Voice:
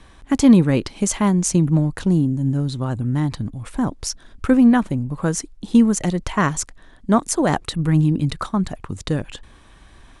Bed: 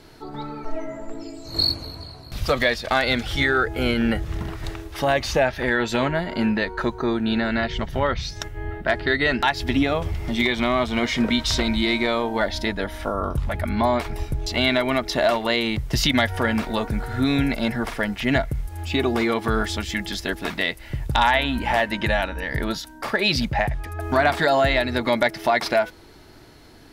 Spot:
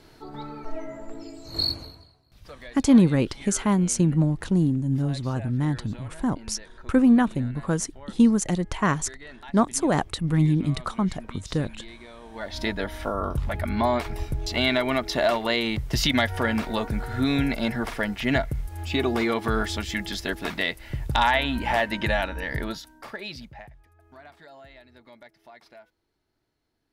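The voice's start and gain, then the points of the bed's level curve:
2.45 s, -4.0 dB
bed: 1.81 s -4.5 dB
2.22 s -23.5 dB
12.19 s -23.5 dB
12.63 s -2.5 dB
22.5 s -2.5 dB
24.04 s -29.5 dB

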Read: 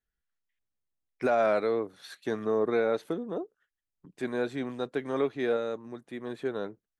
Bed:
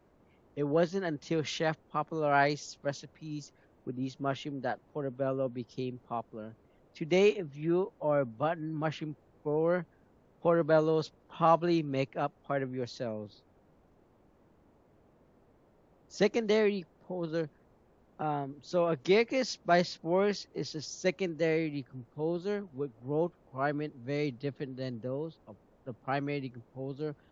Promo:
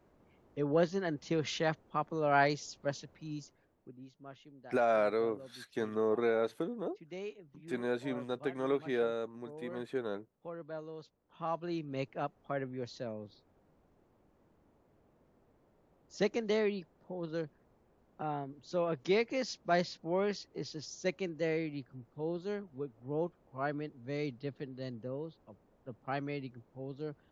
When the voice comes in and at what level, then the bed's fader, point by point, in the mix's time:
3.50 s, -4.0 dB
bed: 3.31 s -1.5 dB
4.1 s -18 dB
11.02 s -18 dB
12.12 s -4.5 dB

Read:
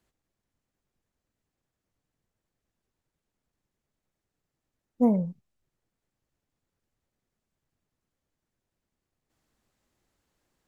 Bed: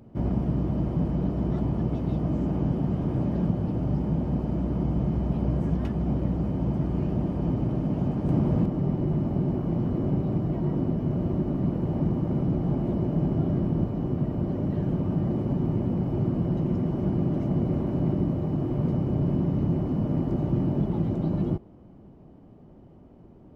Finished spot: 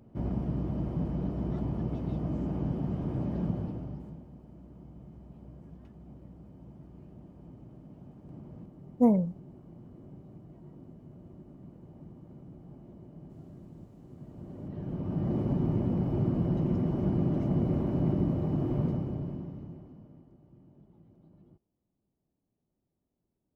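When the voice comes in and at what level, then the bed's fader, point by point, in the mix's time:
4.00 s, 0.0 dB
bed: 3.59 s -6 dB
4.31 s -23.5 dB
14.03 s -23.5 dB
15.36 s -2.5 dB
18.79 s -2.5 dB
20.39 s -32.5 dB

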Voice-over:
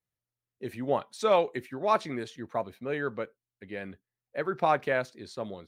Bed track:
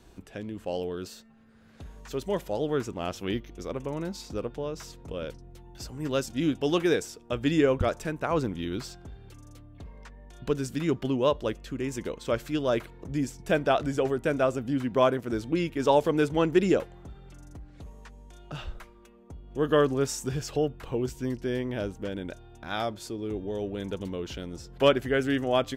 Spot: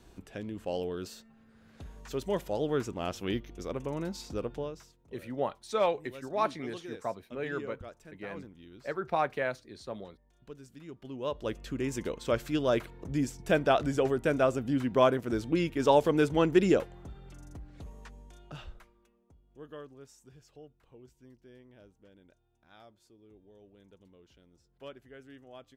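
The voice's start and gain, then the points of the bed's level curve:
4.50 s, -4.0 dB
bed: 4.62 s -2 dB
4.96 s -19.5 dB
10.94 s -19.5 dB
11.6 s -1 dB
18.16 s -1 dB
19.89 s -25 dB

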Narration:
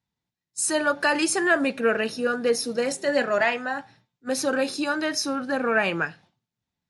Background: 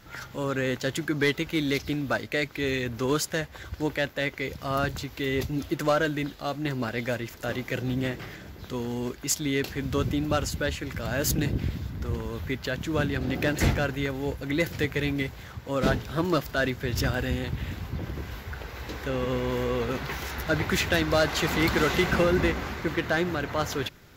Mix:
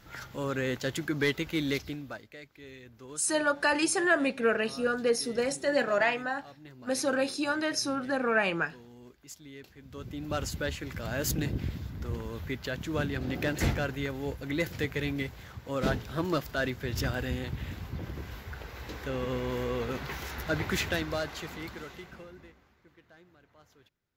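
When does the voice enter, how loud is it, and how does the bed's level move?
2.60 s, -4.0 dB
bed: 1.73 s -3.5 dB
2.37 s -20.5 dB
9.83 s -20.5 dB
10.43 s -4.5 dB
20.82 s -4.5 dB
22.68 s -32 dB

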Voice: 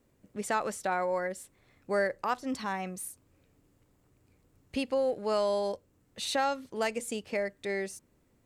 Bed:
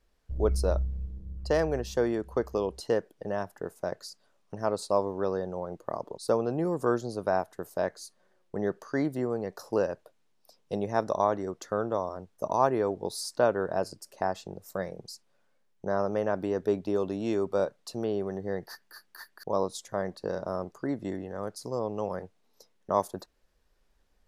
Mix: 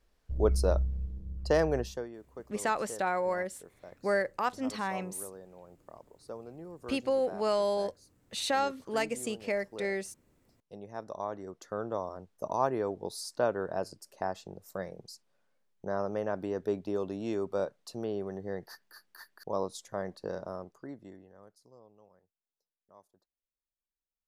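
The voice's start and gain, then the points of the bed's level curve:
2.15 s, 0.0 dB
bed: 1.83 s 0 dB
2.09 s -17 dB
10.58 s -17 dB
11.97 s -4.5 dB
20.35 s -4.5 dB
22.25 s -32 dB

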